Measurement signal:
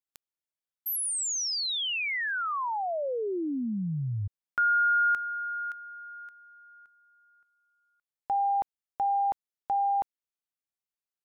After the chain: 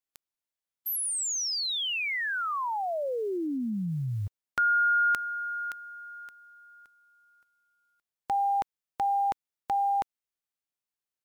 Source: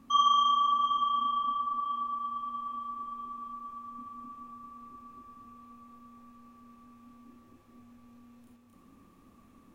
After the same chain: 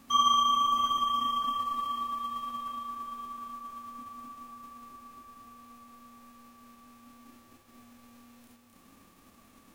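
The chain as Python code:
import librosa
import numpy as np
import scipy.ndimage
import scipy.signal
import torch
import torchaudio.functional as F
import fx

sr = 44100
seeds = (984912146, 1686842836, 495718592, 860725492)

y = fx.envelope_flatten(x, sr, power=0.6)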